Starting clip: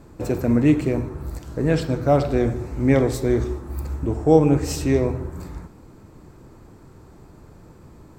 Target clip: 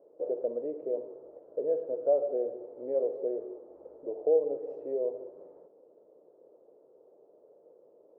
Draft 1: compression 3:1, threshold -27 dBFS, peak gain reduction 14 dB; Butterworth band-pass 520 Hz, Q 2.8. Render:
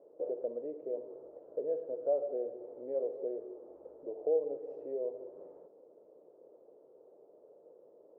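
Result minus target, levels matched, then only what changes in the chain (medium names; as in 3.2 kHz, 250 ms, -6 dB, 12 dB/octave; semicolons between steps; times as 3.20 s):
compression: peak gain reduction +5.5 dB
change: compression 3:1, threshold -19 dBFS, peak gain reduction 8.5 dB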